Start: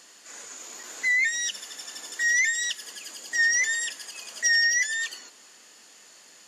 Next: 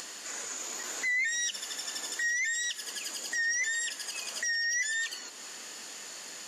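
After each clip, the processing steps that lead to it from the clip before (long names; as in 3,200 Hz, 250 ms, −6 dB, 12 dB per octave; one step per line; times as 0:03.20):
in parallel at +2 dB: upward compression, threshold −28 dBFS
on the sum: brickwall limiter −17 dBFS, peak gain reduction 11 dB
level −7 dB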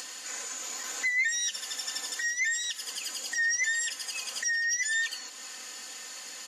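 low-shelf EQ 460 Hz −8.5 dB
comb filter 3.9 ms, depth 68%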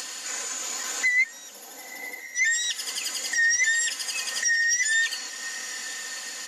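gain on a spectral selection 0:01.24–0:02.35, 980–11,000 Hz −21 dB
feedback delay with all-pass diffusion 990 ms, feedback 42%, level −14.5 dB
level +5.5 dB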